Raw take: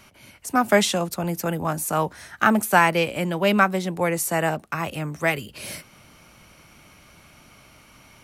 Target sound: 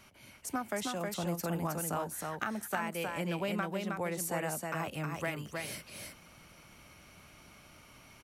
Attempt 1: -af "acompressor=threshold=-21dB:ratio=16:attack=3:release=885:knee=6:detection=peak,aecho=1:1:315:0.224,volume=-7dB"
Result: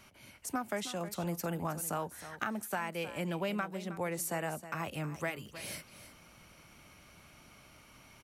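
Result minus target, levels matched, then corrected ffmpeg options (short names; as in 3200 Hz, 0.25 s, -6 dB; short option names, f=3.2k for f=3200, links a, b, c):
echo-to-direct -9.5 dB
-af "acompressor=threshold=-21dB:ratio=16:attack=3:release=885:knee=6:detection=peak,aecho=1:1:315:0.668,volume=-7dB"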